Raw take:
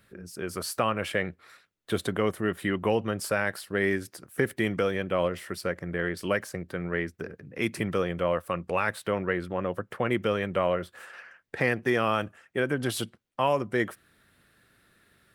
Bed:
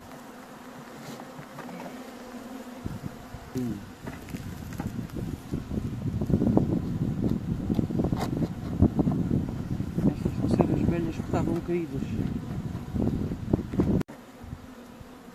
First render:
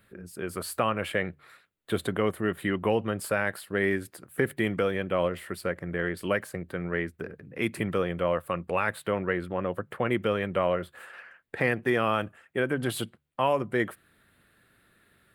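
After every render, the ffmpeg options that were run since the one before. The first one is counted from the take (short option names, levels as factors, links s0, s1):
-af "equalizer=f=5700:w=2.5:g=-11,bandreject=f=72.98:t=h:w=4,bandreject=f=145.96:t=h:w=4"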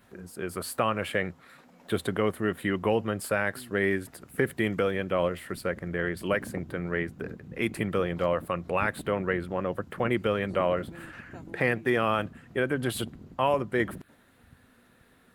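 -filter_complex "[1:a]volume=0.133[s0];[0:a][s0]amix=inputs=2:normalize=0"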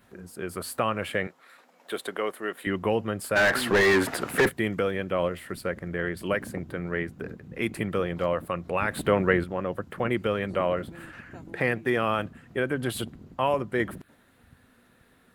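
-filter_complex "[0:a]asettb=1/sr,asplit=3[s0][s1][s2];[s0]atrim=end=1.274[s3];[s1]atrim=start=1.27:end=2.67,asetpts=PTS-STARTPTS,afade=t=in:d=0.004:c=qsin,afade=t=out:st=1.396:d=0.004:c=qsin,highpass=430[s4];[s2]atrim=start=2.666[s5];[s3][s4]acrossfade=d=0.004:c1=hsin:c2=qsin[s6];[s6][s5]acrossfade=d=0.004:c1=qsin:c2=hsin,asplit=3[s7][s8][s9];[s7]afade=t=out:st=3.35:d=0.02[s10];[s8]asplit=2[s11][s12];[s12]highpass=f=720:p=1,volume=44.7,asoftclip=type=tanh:threshold=0.251[s13];[s11][s13]amix=inputs=2:normalize=0,lowpass=f=2100:p=1,volume=0.501,afade=t=in:st=3.35:d=0.02,afade=t=out:st=4.48:d=0.02[s14];[s9]afade=t=in:st=4.48:d=0.02[s15];[s10][s14][s15]amix=inputs=3:normalize=0,asplit=3[s16][s17][s18];[s16]atrim=end=8.912[s19];[s17]atrim=start=8.908:end=9.442,asetpts=PTS-STARTPTS,volume=2[s20];[s18]atrim=start=9.438[s21];[s19][s20]acrossfade=d=0.004:c1=hsin:c2=hsin[s22];[s22][s21]acrossfade=d=0.004:c1=hsin:c2=hsin"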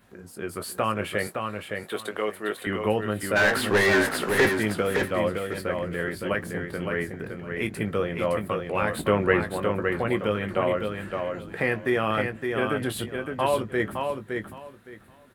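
-filter_complex "[0:a]asplit=2[s0][s1];[s1]adelay=19,volume=0.355[s2];[s0][s2]amix=inputs=2:normalize=0,aecho=1:1:564|1128|1692:0.562|0.112|0.0225"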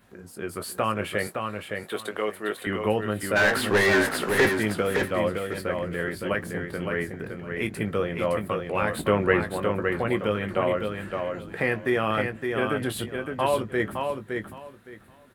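-af anull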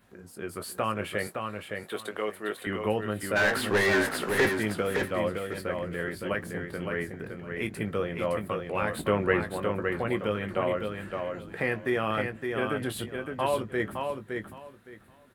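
-af "volume=0.668"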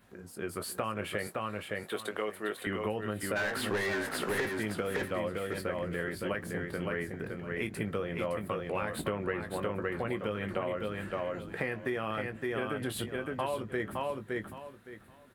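-af "acompressor=threshold=0.0355:ratio=10"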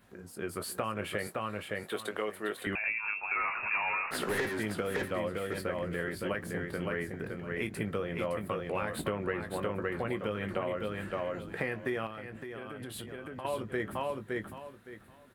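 -filter_complex "[0:a]asettb=1/sr,asplit=3[s0][s1][s2];[s0]atrim=end=2.754[s3];[s1]atrim=start=2.75:end=4.11,asetpts=PTS-STARTPTS,afade=t=in:d=0.004:c=qsin,afade=t=out:st=1.356:d=0.004:c=qsin,lowpass=f=2400:t=q:w=0.5098,lowpass=f=2400:t=q:w=0.6013,lowpass=f=2400:t=q:w=0.9,lowpass=f=2400:t=q:w=2.563,afreqshift=-2800[s4];[s2]atrim=start=4.106[s5];[s3][s4]acrossfade=d=0.004:c1=hsin:c2=qsin[s6];[s6][s5]acrossfade=d=0.004:c1=qsin:c2=hsin,asettb=1/sr,asplit=3[s7][s8][s9];[s7]atrim=end=12.064[s10];[s8]atrim=start=12.06:end=13.45,asetpts=PTS-STARTPTS,afade=t=in:d=0.004:c=qsin,afade=t=out:st=1.386:d=0.004:c=qsin,acompressor=threshold=0.0126:ratio=6:attack=3.2:release=140:knee=1:detection=peak[s11];[s9]atrim=start=13.446[s12];[s10][s11]acrossfade=d=0.004:c1=hsin:c2=qsin[s13];[s13][s12]acrossfade=d=0.004:c1=qsin:c2=hsin"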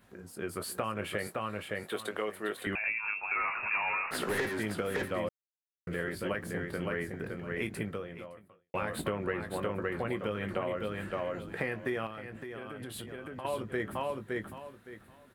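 -filter_complex "[0:a]asplit=4[s0][s1][s2][s3];[s0]atrim=end=5.29,asetpts=PTS-STARTPTS,afade=t=out:st=5.286:d=0.004:c=hsin[s4];[s1]atrim=start=5.29:end=5.87,asetpts=PTS-STARTPTS,volume=0[s5];[s2]atrim=start=5.87:end=8.74,asetpts=PTS-STARTPTS,afade=t=in:d=0.004:c=hsin,afade=t=out:st=1.88:d=0.99:c=qua[s6];[s3]atrim=start=8.74,asetpts=PTS-STARTPTS,afade=t=in:d=0.004:c=hsin[s7];[s4][s5][s6][s7]concat=n=4:v=0:a=1"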